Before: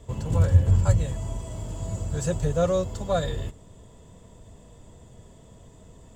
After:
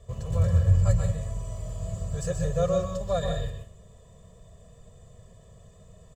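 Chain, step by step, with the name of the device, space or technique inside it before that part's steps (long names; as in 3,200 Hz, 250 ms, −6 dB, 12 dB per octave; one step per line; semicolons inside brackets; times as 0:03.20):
microphone above a desk (comb filter 1.7 ms, depth 83%; convolution reverb RT60 0.35 s, pre-delay 120 ms, DRR 3.5 dB)
level −7 dB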